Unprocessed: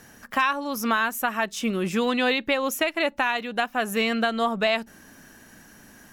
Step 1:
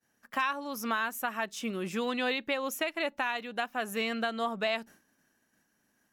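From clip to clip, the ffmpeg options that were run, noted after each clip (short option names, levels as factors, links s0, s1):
-af "agate=range=0.0224:threshold=0.0112:ratio=3:detection=peak,lowshelf=f=91:g=-11,volume=0.422"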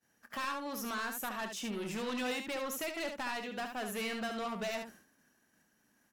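-af "asoftclip=type=tanh:threshold=0.0188,aecho=1:1:24|72:0.188|0.473"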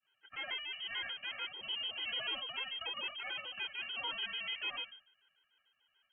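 -af "aeval=exprs='max(val(0),0)':c=same,lowpass=f=2700:t=q:w=0.5098,lowpass=f=2700:t=q:w=0.6013,lowpass=f=2700:t=q:w=0.9,lowpass=f=2700:t=q:w=2.563,afreqshift=-3200,afftfilt=real='re*gt(sin(2*PI*6.8*pts/sr)*(1-2*mod(floor(b*sr/1024/270),2)),0)':imag='im*gt(sin(2*PI*6.8*pts/sr)*(1-2*mod(floor(b*sr/1024/270),2)),0)':win_size=1024:overlap=0.75,volume=1.58"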